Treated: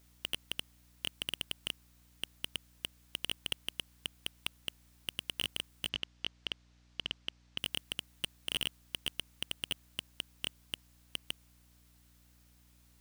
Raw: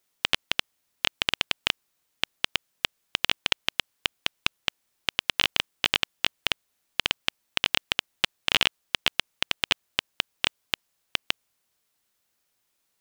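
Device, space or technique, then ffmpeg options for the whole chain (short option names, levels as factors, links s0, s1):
valve amplifier with mains hum: -filter_complex "[0:a]aeval=exprs='(tanh(31.6*val(0)+0.3)-tanh(0.3))/31.6':c=same,aeval=exprs='val(0)+0.000282*(sin(2*PI*60*n/s)+sin(2*PI*2*60*n/s)/2+sin(2*PI*3*60*n/s)/3+sin(2*PI*4*60*n/s)/4+sin(2*PI*5*60*n/s)/5)':c=same,asettb=1/sr,asplit=3[s0][s1][s2];[s0]atrim=end=5.894[s3];[s1]atrim=start=5.89:end=7.58,asetpts=PTS-STARTPTS,afade=t=in:d=0.004:c=qsin,afade=t=out:st=1.686:d=0.004:c=qsin,lowpass=f=6100:w=0.5412,lowpass=f=6100:w=1.3066[s4];[s2]atrim=start=7.576[s5];[s3][s4]acrossfade=d=0.004:c1=hsin:c2=qsin[s6];[s6][s5]acrossfade=d=0.004:c1=qsin:c2=hsin,volume=2.24"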